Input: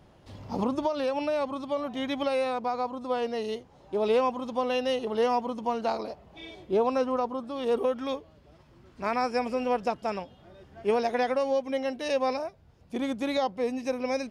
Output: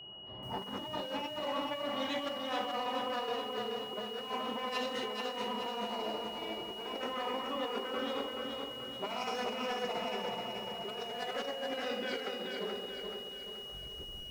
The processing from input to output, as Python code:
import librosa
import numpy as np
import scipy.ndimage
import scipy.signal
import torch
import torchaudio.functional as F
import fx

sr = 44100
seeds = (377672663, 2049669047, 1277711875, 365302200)

y = fx.tape_stop_end(x, sr, length_s=2.61)
y = fx.env_lowpass(y, sr, base_hz=1100.0, full_db=-21.5)
y = 10.0 ** (-28.5 / 20.0) * np.tanh(y / 10.0 ** (-28.5 / 20.0))
y = fx.rev_fdn(y, sr, rt60_s=1.1, lf_ratio=1.25, hf_ratio=0.75, size_ms=46.0, drr_db=-2.5)
y = fx.over_compress(y, sr, threshold_db=-32.0, ratio=-0.5)
y = fx.low_shelf(y, sr, hz=160.0, db=-12.0)
y = y + 10.0 ** (-43.0 / 20.0) * np.sin(2.0 * np.pi * 2900.0 * np.arange(len(y)) / sr)
y = fx.low_shelf(y, sr, hz=390.0, db=-3.0)
y = fx.echo_crushed(y, sr, ms=429, feedback_pct=55, bits=9, wet_db=-4)
y = F.gain(torch.from_numpy(y), -4.0).numpy()